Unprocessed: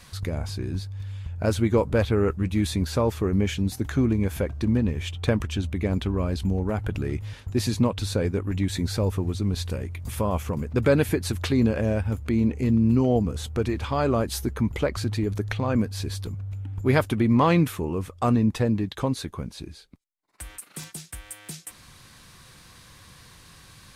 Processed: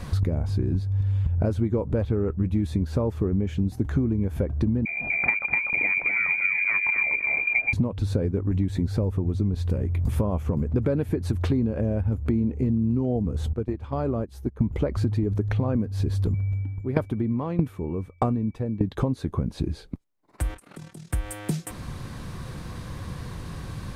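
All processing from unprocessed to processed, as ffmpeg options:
-filter_complex "[0:a]asettb=1/sr,asplit=3[s0][s1][s2];[s0]atrim=end=4.854[s3];[s1]atrim=start=4.85:end=7.73,asetpts=PTS-STARTPTS,afade=t=in:d=0.004:c=qsin,afade=t=out:st=2.876:d=0.004:c=qsin,equalizer=f=130:w=1.9:g=15,lowpass=f=2100:t=q:w=0.5098,lowpass=f=2100:t=q:w=0.6013,lowpass=f=2100:t=q:w=0.9,lowpass=f=2100:t=q:w=2.563,afreqshift=-2500,aecho=1:1:246|492|738:0.562|0.0956|0.0163,atrim=end_sample=127008[s4];[s2]atrim=start=7.726[s5];[s3][s4]acrossfade=d=0.004:c1=hsin:c2=qsin[s6];[s6][s5]acrossfade=d=0.004:c1=qsin:c2=hsin,asettb=1/sr,asplit=3[s7][s8][s9];[s7]atrim=end=13.534[s10];[s8]atrim=start=13.53:end=14.61,asetpts=PTS-STARTPTS,afade=t=in:d=0.004:c=qsin,afade=t=out:st=1.076:d=0.004:c=qsin,agate=range=0.0794:threshold=0.0562:ratio=16:release=100:detection=peak,acompressor=threshold=0.00631:ratio=2.5:attack=3.2:release=140:knee=1:detection=peak[s11];[s9]atrim=start=14.606[s12];[s10][s11]acrossfade=d=0.004:c1=hsin:c2=qsin[s13];[s13][s12]acrossfade=d=0.004:c1=qsin:c2=hsin,asettb=1/sr,asplit=3[s14][s15][s16];[s14]atrim=end=16.344[s17];[s15]atrim=start=16.34:end=18.81,asetpts=PTS-STARTPTS,afade=t=in:d=0.004:c=qsin,afade=t=out:st=2.466:d=0.004:c=qsin,aeval=exprs='val(0)+0.00501*sin(2*PI*2300*n/s)':c=same,aeval=exprs='val(0)*pow(10,-27*if(lt(mod(1.6*n/s,1),2*abs(1.6)/1000),1-mod(1.6*n/s,1)/(2*abs(1.6)/1000),(mod(1.6*n/s,1)-2*abs(1.6)/1000)/(1-2*abs(1.6)/1000))/20)':c=same[s18];[s16]atrim=start=18.806[s19];[s17][s18]acrossfade=d=0.004:c1=hsin:c2=qsin[s20];[s20][s19]acrossfade=d=0.004:c1=qsin:c2=hsin,asettb=1/sr,asplit=3[s21][s22][s23];[s21]atrim=end=20.544[s24];[s22]atrim=start=20.54:end=21.11,asetpts=PTS-STARTPTS,afade=t=in:d=0.004:c=qsin,afade=t=out:st=0.566:d=0.004:c=qsin,lowpass=11000,acompressor=threshold=0.00398:ratio=6:attack=3.2:release=140:knee=1:detection=peak,tremolo=f=39:d=0.71[s25];[s23]atrim=start=21.106[s26];[s24][s25]acrossfade=d=0.004:c1=hsin:c2=qsin[s27];[s27][s26]acrossfade=d=0.004:c1=qsin:c2=hsin,tiltshelf=f=1200:g=9,acompressor=threshold=0.0316:ratio=10,volume=2.82"

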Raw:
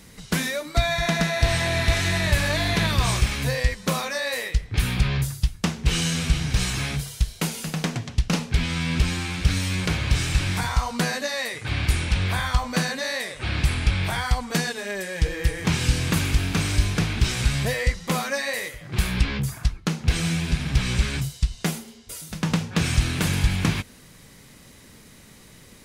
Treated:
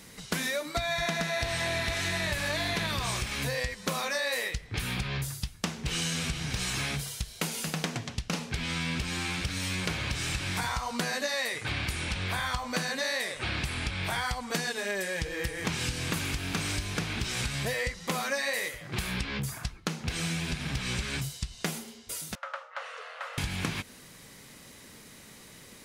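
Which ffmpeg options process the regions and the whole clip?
-filter_complex "[0:a]asettb=1/sr,asplit=3[s0][s1][s2];[s0]atrim=end=22.354[s3];[s1]atrim=start=22.35:end=23.38,asetpts=PTS-STARTPTS,afade=t=in:d=0.004:c=qsin,afade=t=out:st=1.026:d=0.004:c=qsin,bandpass=f=900:t=q:w=2.9,afreqshift=380[s4];[s2]atrim=start=23.376[s5];[s3][s4]acrossfade=d=0.004:c1=hsin:c2=qsin[s6];[s6][s5]acrossfade=d=0.004:c1=qsin:c2=hsin,lowshelf=f=92:g=-6,acompressor=threshold=0.0501:ratio=6,lowshelf=f=240:g=-4.5"

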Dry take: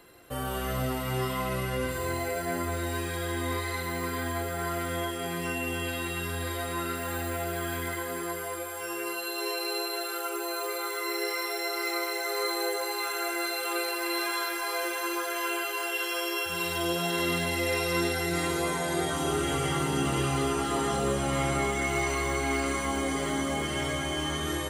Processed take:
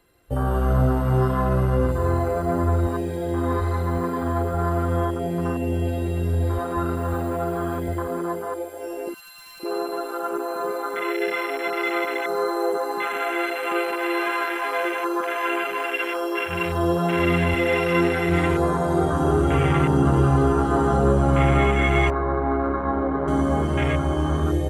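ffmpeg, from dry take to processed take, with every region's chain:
-filter_complex "[0:a]asettb=1/sr,asplit=3[s0][s1][s2];[s0]atrim=end=9.144[s3];[s1]atrim=start=9.14:end=9.6,asetpts=PTS-STARTPTS,afade=t=in:d=0.004:c=qsin,afade=t=out:st=0.456:d=0.004:c=qsin,highpass=f=1000:w=0.5412,highpass=f=1000:w=1.3066,aeval=exprs='0.0316*(abs(mod(val(0)/0.0316+3,4)-2)-1)':c=same[s4];[s2]atrim=start=9.596[s5];[s3][s4]acrossfade=d=0.004:c1=hsin:c2=qsin[s6];[s6][s5]acrossfade=d=0.004:c1=qsin:c2=hsin,asettb=1/sr,asplit=3[s7][s8][s9];[s7]atrim=end=22.104[s10];[s8]atrim=start=22.1:end=23.28,asetpts=PTS-STARTPTS,afade=t=in:d=0.004:c=qsin,afade=t=out:st=1.176:d=0.004:c=qsin,lowpass=f=1900:w=0.5412,lowpass=f=1900:w=1.3066,lowshelf=f=180:g=-9[s11];[s9]atrim=start=23.276[s12];[s10][s11]acrossfade=d=0.004:c1=hsin:c2=qsin[s13];[s13][s12]acrossfade=d=0.004:c1=qsin:c2=hsin,afwtdn=0.0282,lowshelf=f=96:g=12,volume=2.51"

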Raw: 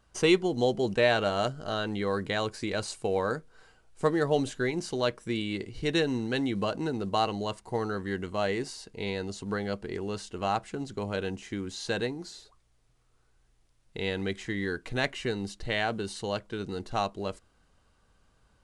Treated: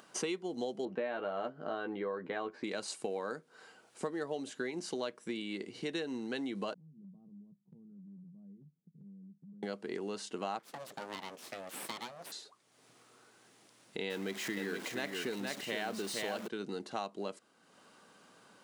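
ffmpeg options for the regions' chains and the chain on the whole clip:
-filter_complex "[0:a]asettb=1/sr,asplit=3[s0][s1][s2];[s0]atrim=end=0.854[s3];[s1]atrim=start=0.85:end=2.64,asetpts=PTS-STARTPTS,afade=t=in:d=0.004:c=qsin,afade=t=out:st=1.786:d=0.004:c=qsin,lowpass=1800,asplit=2[s4][s5];[s5]adelay=12,volume=0.562[s6];[s4][s6]amix=inputs=2:normalize=0,atrim=end_sample=78939[s7];[s2]atrim=start=2.636[s8];[s3][s7]acrossfade=d=0.004:c1=hsin:c2=qsin[s9];[s9][s8]acrossfade=d=0.004:c1=qsin:c2=hsin,asettb=1/sr,asplit=3[s10][s11][s12];[s10]atrim=end=6.744[s13];[s11]atrim=start=6.74:end=9.63,asetpts=PTS-STARTPTS,afade=t=in:d=0.004:c=qsin,afade=t=out:st=2.886:d=0.004:c=qsin,asuperpass=centerf=160:order=4:qfactor=4.8,acompressor=threshold=0.00398:ratio=5:attack=3.2:release=140:knee=1:detection=peak[s14];[s12]atrim=start=9.626[s15];[s13][s14]acrossfade=d=0.004:c1=hsin:c2=qsin[s16];[s16][s15]acrossfade=d=0.004:c1=qsin:c2=hsin,asettb=1/sr,asplit=3[s17][s18][s19];[s17]atrim=end=10.594[s20];[s18]atrim=start=10.59:end=12.32,asetpts=PTS-STARTPTS,afade=t=in:d=0.004:c=qsin,afade=t=out:st=1.726:d=0.004:c=qsin,highpass=250,aeval=exprs='abs(val(0))':c=same[s21];[s19]atrim=start=12.316[s22];[s20][s21]acrossfade=d=0.004:c1=hsin:c2=qsin[s23];[s23][s22]acrossfade=d=0.004:c1=qsin:c2=hsin,asettb=1/sr,asplit=3[s24][s25][s26];[s24]atrim=end=14.104[s27];[s25]atrim=start=14.1:end=16.48,asetpts=PTS-STARTPTS,afade=t=in:d=0.004:c=qsin,afade=t=out:st=2.376:d=0.004:c=qsin,aeval=exprs='val(0)+0.5*0.0211*sgn(val(0))':c=same,aecho=1:1:468:0.596,atrim=end_sample=104958[s28];[s26]atrim=start=16.476[s29];[s27][s28]acrossfade=d=0.004:c1=hsin:c2=qsin[s30];[s30][s29]acrossfade=d=0.004:c1=qsin:c2=hsin,acompressor=threshold=0.0158:ratio=6,highpass=f=190:w=0.5412,highpass=f=190:w=1.3066,acompressor=mode=upward:threshold=0.00224:ratio=2.5,volume=1.19"

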